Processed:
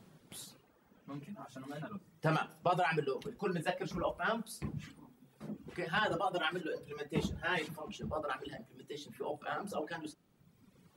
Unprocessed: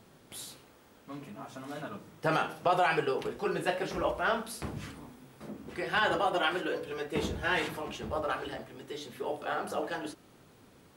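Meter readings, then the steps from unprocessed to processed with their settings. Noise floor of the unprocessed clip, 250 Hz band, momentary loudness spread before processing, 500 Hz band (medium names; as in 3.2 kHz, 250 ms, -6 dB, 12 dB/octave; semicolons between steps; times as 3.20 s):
-59 dBFS, -3.0 dB, 17 LU, -5.5 dB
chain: reverb removal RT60 1.5 s; peaking EQ 170 Hz +9 dB 0.86 oct; trim -4.5 dB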